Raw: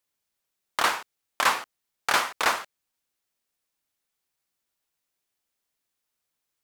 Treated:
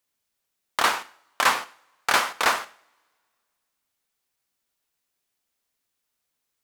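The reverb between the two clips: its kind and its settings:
coupled-rooms reverb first 0.49 s, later 2.1 s, from −27 dB, DRR 13 dB
level +2 dB

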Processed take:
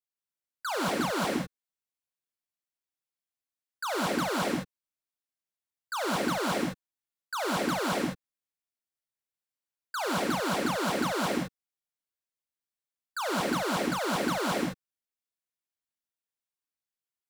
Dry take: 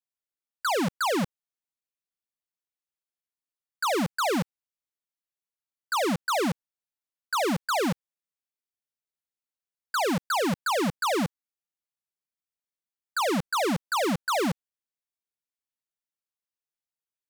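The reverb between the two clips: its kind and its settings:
reverb whose tail is shaped and stops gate 230 ms rising, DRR −3 dB
level −7 dB

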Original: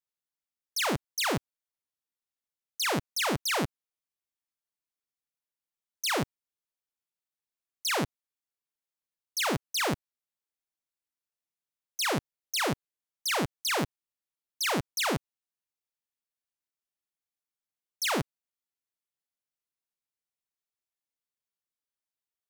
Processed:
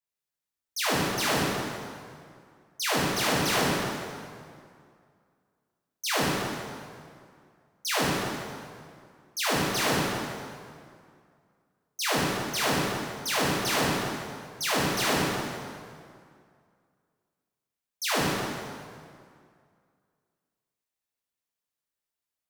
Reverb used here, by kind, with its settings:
dense smooth reverb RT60 2.2 s, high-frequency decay 0.75×, DRR −7 dB
level −3.5 dB

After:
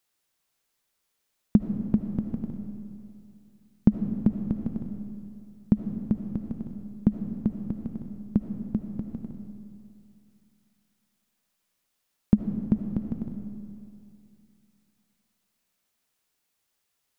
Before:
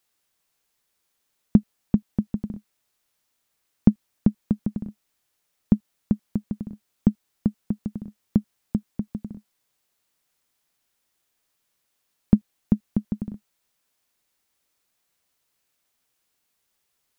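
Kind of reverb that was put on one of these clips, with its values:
comb and all-pass reverb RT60 2.6 s, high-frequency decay 0.8×, pre-delay 35 ms, DRR 6 dB
level −3 dB

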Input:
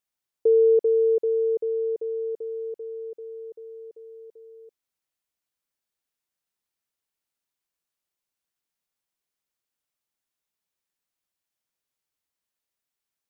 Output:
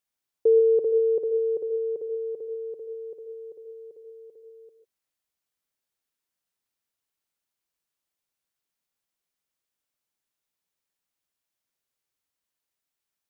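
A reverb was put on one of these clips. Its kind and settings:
reverb whose tail is shaped and stops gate 170 ms rising, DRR 9 dB

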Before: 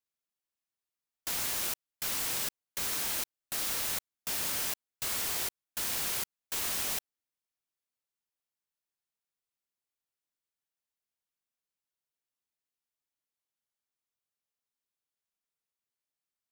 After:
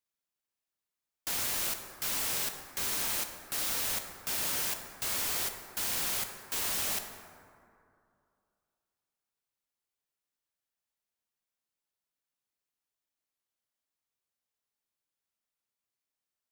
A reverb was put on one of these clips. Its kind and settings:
dense smooth reverb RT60 2.5 s, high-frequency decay 0.4×, DRR 5 dB

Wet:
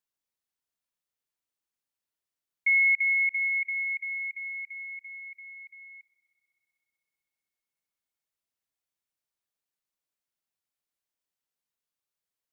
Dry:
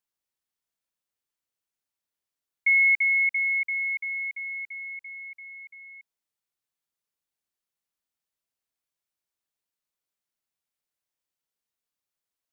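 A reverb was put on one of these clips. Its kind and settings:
spring reverb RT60 3.6 s, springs 58 ms, chirp 20 ms, DRR 13 dB
level −2.5 dB

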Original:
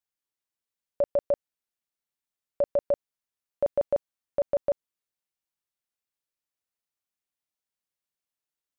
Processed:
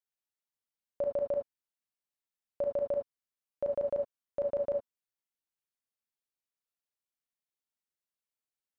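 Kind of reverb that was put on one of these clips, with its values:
reverb whose tail is shaped and stops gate 90 ms rising, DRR 4 dB
level −7.5 dB

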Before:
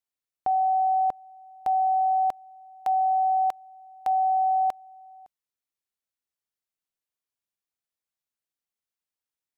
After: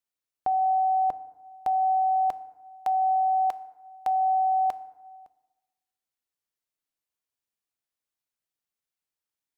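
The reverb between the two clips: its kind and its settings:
feedback delay network reverb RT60 1.2 s, low-frequency decay 1.05×, high-frequency decay 0.5×, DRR 14.5 dB

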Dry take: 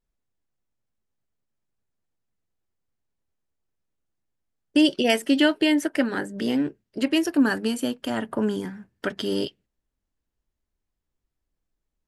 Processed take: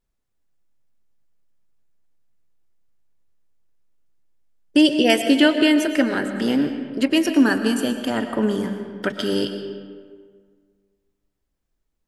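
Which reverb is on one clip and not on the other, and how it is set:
comb and all-pass reverb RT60 1.8 s, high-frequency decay 0.6×, pre-delay 75 ms, DRR 7.5 dB
level +3.5 dB

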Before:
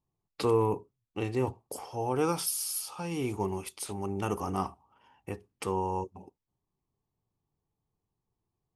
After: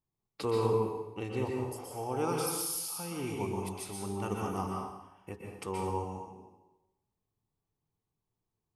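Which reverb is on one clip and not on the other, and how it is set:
dense smooth reverb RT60 0.96 s, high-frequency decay 0.95×, pre-delay 110 ms, DRR −1 dB
level −5.5 dB

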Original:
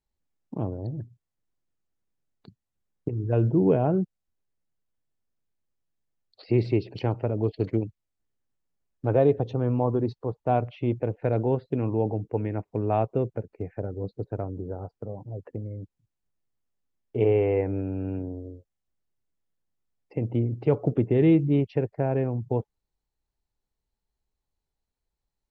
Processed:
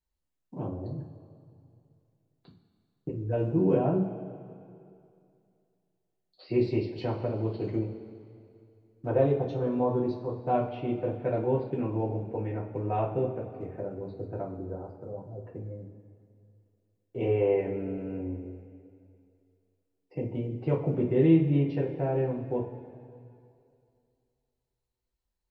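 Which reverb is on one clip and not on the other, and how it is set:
coupled-rooms reverb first 0.29 s, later 2.5 s, from −17 dB, DRR −5 dB
level −8.5 dB

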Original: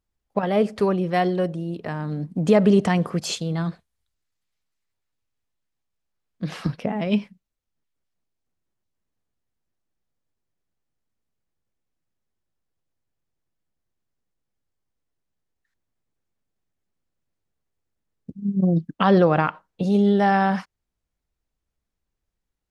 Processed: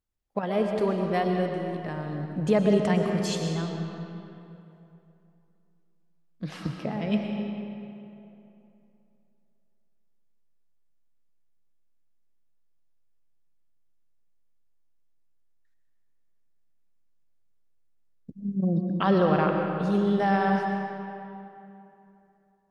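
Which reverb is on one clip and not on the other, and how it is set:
comb and all-pass reverb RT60 2.9 s, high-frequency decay 0.65×, pre-delay 75 ms, DRR 2.5 dB
level −6 dB

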